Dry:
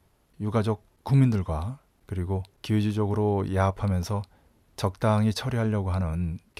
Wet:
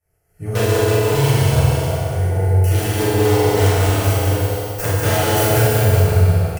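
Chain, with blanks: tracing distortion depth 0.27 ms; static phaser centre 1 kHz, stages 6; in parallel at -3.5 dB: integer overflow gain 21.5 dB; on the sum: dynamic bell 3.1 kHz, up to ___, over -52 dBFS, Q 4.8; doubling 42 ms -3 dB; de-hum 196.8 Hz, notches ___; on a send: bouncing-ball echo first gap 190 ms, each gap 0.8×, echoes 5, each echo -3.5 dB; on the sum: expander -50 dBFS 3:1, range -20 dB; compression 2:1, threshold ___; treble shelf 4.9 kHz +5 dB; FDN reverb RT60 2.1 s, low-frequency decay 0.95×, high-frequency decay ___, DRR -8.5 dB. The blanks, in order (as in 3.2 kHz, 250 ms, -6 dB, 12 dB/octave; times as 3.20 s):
+3 dB, 40, -24 dBFS, 0.85×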